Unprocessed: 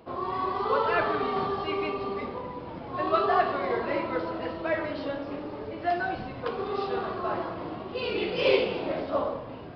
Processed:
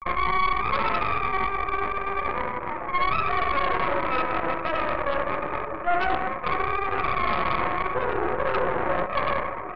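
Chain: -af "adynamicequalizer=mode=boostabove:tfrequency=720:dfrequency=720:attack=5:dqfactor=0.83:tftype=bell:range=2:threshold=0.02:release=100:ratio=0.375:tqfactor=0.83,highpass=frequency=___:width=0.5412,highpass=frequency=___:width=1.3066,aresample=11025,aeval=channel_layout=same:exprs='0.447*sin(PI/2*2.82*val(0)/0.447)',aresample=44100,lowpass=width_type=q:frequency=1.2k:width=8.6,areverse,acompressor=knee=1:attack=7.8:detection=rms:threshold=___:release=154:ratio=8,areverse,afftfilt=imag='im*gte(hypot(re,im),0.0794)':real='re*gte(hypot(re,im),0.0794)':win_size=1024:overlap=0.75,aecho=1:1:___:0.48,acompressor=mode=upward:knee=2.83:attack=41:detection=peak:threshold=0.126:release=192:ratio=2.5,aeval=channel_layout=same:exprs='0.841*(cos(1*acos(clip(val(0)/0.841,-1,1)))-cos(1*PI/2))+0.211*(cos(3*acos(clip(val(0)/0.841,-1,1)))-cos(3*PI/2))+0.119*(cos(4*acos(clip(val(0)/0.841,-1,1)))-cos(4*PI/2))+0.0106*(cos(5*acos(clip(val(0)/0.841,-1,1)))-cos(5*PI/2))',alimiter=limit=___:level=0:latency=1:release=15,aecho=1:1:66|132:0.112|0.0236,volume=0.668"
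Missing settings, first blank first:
310, 310, 0.282, 5.5, 0.398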